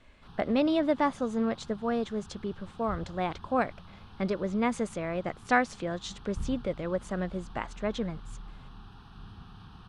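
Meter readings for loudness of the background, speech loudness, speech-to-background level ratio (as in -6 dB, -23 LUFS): -49.0 LUFS, -31.5 LUFS, 17.5 dB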